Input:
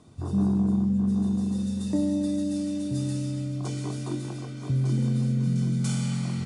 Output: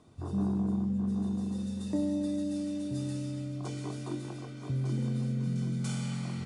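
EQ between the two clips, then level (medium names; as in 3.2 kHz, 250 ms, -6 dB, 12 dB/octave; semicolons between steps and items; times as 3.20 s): tone controls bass -9 dB, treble -4 dB; bass shelf 150 Hz +8.5 dB; -3.5 dB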